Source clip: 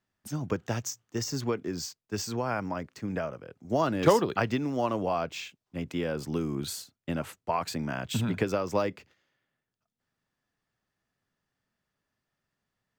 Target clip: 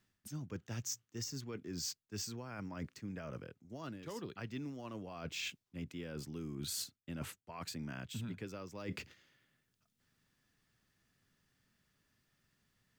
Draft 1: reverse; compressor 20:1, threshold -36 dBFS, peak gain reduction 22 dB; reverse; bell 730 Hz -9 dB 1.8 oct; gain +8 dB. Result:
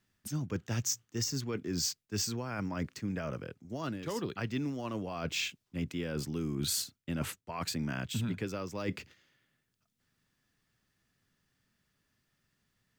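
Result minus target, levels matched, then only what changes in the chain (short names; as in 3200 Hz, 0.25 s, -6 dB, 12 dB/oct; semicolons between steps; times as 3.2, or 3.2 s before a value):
compressor: peak gain reduction -8.5 dB
change: compressor 20:1, threshold -45 dBFS, peak gain reduction 30.5 dB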